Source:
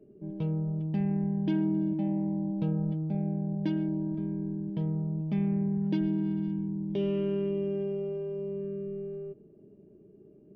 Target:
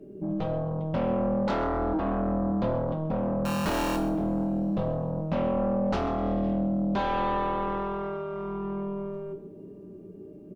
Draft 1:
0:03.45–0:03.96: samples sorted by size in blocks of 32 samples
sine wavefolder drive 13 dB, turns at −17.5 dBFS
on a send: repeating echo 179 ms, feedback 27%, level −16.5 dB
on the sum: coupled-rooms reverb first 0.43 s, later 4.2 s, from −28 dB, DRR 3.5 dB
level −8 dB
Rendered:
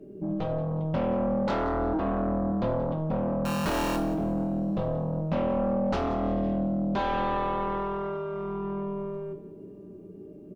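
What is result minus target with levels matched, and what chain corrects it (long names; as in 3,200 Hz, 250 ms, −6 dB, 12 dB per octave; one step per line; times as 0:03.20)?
echo 49 ms late
0:03.45–0:03.96: samples sorted by size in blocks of 32 samples
sine wavefolder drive 13 dB, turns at −17.5 dBFS
on a send: repeating echo 130 ms, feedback 27%, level −16.5 dB
on the sum: coupled-rooms reverb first 0.43 s, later 4.2 s, from −28 dB, DRR 3.5 dB
level −8 dB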